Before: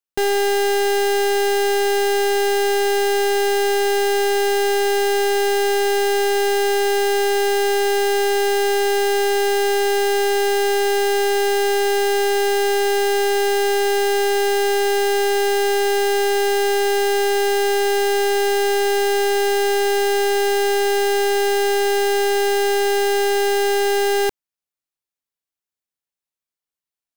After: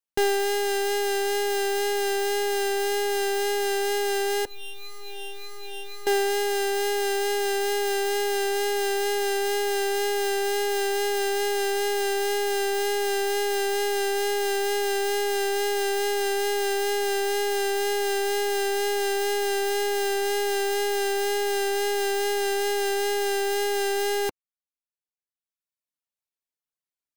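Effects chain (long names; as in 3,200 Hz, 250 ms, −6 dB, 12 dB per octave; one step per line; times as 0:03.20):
tape wow and flutter 19 cents
0:04.45–0:06.07: stiff-string resonator 180 Hz, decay 0.23 s, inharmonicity 0.008
reverb reduction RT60 1.2 s
level −2.5 dB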